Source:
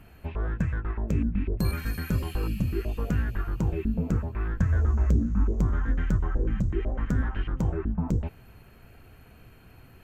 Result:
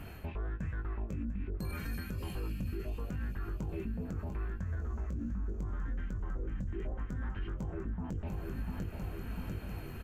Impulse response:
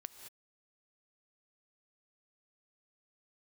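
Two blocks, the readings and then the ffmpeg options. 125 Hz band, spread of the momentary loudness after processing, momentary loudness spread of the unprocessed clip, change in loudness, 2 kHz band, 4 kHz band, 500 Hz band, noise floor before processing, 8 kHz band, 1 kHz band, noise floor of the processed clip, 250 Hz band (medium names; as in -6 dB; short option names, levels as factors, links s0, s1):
-11.0 dB, 2 LU, 7 LU, -11.0 dB, -9.0 dB, -8.0 dB, -9.0 dB, -52 dBFS, no reading, -8.5 dB, -44 dBFS, -10.5 dB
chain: -filter_complex "[0:a]aecho=1:1:696|1392|2088|2784|3480:0.2|0.108|0.0582|0.0314|0.017,areverse,acompressor=threshold=0.0224:ratio=6,areverse,asplit=2[s0][s1];[s1]adelay=21,volume=0.447[s2];[s0][s2]amix=inputs=2:normalize=0,alimiter=level_in=3.35:limit=0.0631:level=0:latency=1:release=178,volume=0.299,volume=1.78"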